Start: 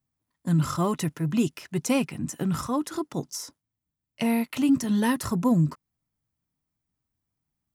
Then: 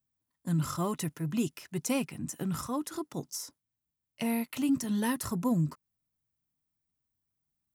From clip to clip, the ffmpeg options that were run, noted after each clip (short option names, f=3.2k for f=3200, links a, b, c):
-af "highshelf=f=8.3k:g=8.5,volume=-6.5dB"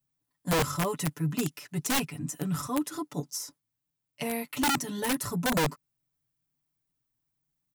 -af "aecho=1:1:6.9:0.9,aeval=exprs='(mod(10.6*val(0)+1,2)-1)/10.6':c=same"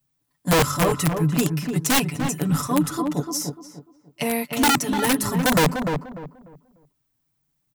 -filter_complex "[0:a]asplit=2[a][b];[b]adelay=297,lowpass=f=1.2k:p=1,volume=-5dB,asplit=2[c][d];[d]adelay=297,lowpass=f=1.2k:p=1,volume=0.29,asplit=2[e][f];[f]adelay=297,lowpass=f=1.2k:p=1,volume=0.29,asplit=2[g][h];[h]adelay=297,lowpass=f=1.2k:p=1,volume=0.29[i];[a][c][e][g][i]amix=inputs=5:normalize=0,volume=8dB"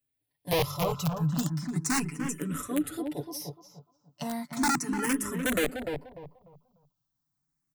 -filter_complex "[0:a]asplit=2[a][b];[b]afreqshift=0.35[c];[a][c]amix=inputs=2:normalize=1,volume=-6dB"